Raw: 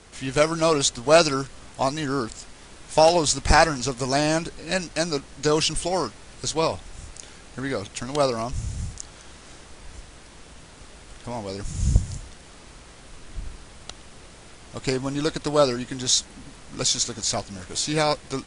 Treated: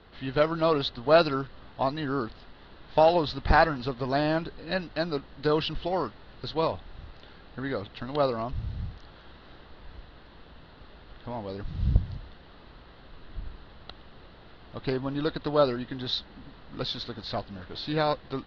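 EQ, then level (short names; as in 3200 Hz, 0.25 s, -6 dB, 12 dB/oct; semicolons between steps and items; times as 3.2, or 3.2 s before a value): elliptic low-pass 4200 Hz, stop band 50 dB; air absorption 69 m; bell 2300 Hz -9.5 dB 0.27 oct; -2.5 dB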